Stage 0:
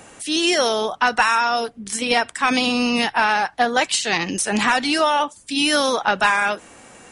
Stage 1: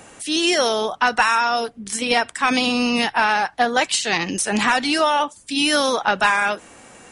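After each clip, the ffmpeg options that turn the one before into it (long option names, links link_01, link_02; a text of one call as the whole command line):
ffmpeg -i in.wav -af anull out.wav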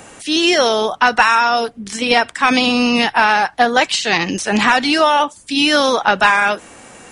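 ffmpeg -i in.wav -filter_complex "[0:a]acrossover=split=6600[link_01][link_02];[link_02]acompressor=threshold=-44dB:ratio=4:attack=1:release=60[link_03];[link_01][link_03]amix=inputs=2:normalize=0,volume=5dB" out.wav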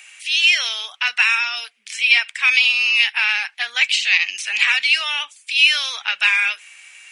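ffmpeg -i in.wav -af "highpass=frequency=2400:width_type=q:width=4.2,volume=-5.5dB" out.wav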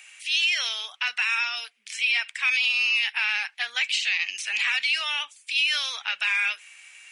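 ffmpeg -i in.wav -af "alimiter=limit=-9.5dB:level=0:latency=1:release=42,volume=-5dB" out.wav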